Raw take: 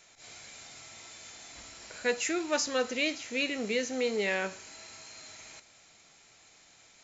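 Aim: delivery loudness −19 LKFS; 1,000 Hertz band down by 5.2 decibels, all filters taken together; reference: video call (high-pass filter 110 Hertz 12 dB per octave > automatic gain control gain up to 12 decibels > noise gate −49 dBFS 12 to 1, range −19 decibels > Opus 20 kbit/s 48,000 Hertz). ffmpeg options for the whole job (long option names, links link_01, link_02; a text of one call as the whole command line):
ffmpeg -i in.wav -af "highpass=110,equalizer=frequency=1000:width_type=o:gain=-7.5,dynaudnorm=maxgain=12dB,agate=range=-19dB:threshold=-49dB:ratio=12,volume=14dB" -ar 48000 -c:a libopus -b:a 20k out.opus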